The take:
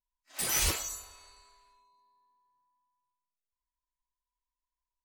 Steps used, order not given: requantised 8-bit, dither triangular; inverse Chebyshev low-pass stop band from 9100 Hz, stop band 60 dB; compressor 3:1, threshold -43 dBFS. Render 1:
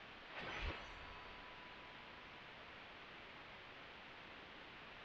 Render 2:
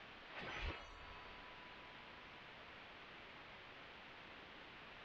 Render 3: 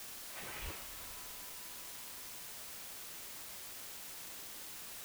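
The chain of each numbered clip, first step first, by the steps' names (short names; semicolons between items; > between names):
compressor > requantised > inverse Chebyshev low-pass; requantised > compressor > inverse Chebyshev low-pass; compressor > inverse Chebyshev low-pass > requantised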